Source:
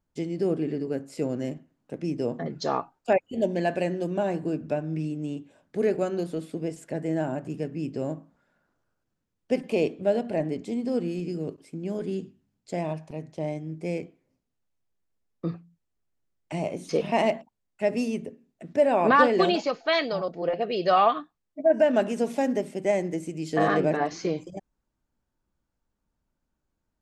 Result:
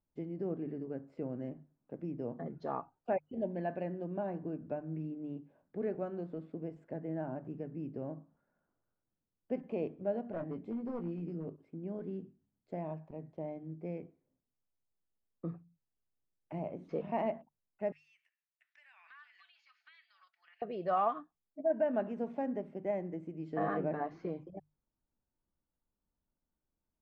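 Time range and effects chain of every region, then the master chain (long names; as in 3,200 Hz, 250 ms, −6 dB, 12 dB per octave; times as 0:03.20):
0:10.33–0:11.49: hard clipping −24 dBFS + double-tracking delay 18 ms −6.5 dB
0:17.92–0:20.62: inverse Chebyshev high-pass filter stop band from 510 Hz, stop band 60 dB + high-shelf EQ 2,300 Hz +10 dB + downward compressor 4 to 1, threshold −42 dBFS
whole clip: low-pass filter 1,300 Hz 12 dB per octave; mains-hum notches 50/100/150 Hz; dynamic equaliser 410 Hz, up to −4 dB, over −32 dBFS, Q 1.2; level −8.5 dB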